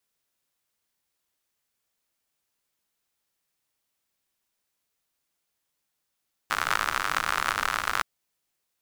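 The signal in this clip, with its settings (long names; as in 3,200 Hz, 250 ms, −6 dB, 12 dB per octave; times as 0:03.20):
rain-like ticks over hiss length 1.52 s, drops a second 82, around 1,300 Hz, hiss −15 dB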